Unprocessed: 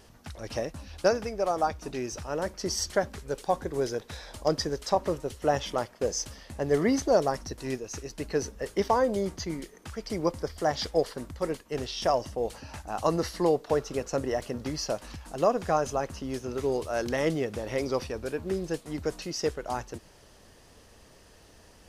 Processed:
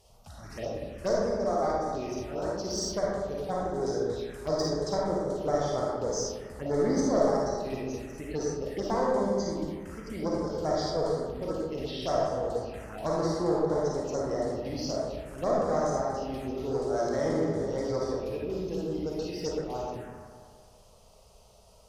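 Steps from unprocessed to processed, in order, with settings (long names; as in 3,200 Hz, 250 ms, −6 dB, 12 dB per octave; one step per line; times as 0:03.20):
asymmetric clip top −24.5 dBFS
comb and all-pass reverb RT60 1.4 s, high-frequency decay 0.45×, pre-delay 10 ms, DRR −4.5 dB
phaser swept by the level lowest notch 260 Hz, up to 2,700 Hz, full sweep at −21.5 dBFS
on a send: bucket-brigade delay 198 ms, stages 4,096, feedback 50%, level −12 dB
on the sum: level −5.5 dB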